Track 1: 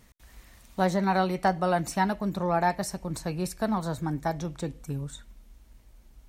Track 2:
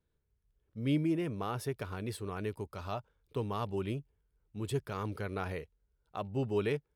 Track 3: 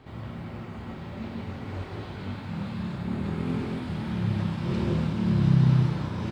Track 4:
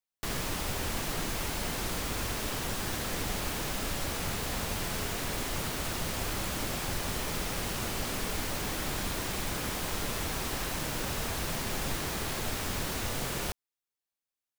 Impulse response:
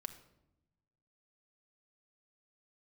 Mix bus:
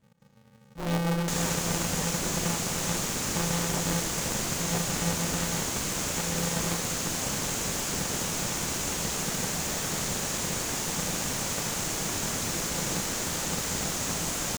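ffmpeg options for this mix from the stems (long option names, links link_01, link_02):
-filter_complex "[0:a]aemphasis=mode=reproduction:type=bsi,asplit=2[link_01][link_02];[link_02]afreqshift=-1.9[link_03];[link_01][link_03]amix=inputs=2:normalize=1,volume=-15.5dB,asplit=2[link_04][link_05];[link_05]volume=-9.5dB[link_06];[1:a]dynaudnorm=framelen=110:gausssize=17:maxgain=4dB,aeval=exprs='abs(val(0))':channel_layout=same,volume=-5.5dB,asplit=2[link_07][link_08];[link_08]volume=-7.5dB[link_09];[3:a]adelay=1050,volume=0.5dB[link_10];[4:a]atrim=start_sample=2205[link_11];[link_09][link_11]afir=irnorm=-1:irlink=0[link_12];[link_06]aecho=0:1:143:1[link_13];[link_04][link_07][link_10][link_12][link_13]amix=inputs=5:normalize=0,equalizer=frequency=6800:width_type=o:width=0.6:gain=12.5,aeval=exprs='val(0)*sgn(sin(2*PI*170*n/s))':channel_layout=same"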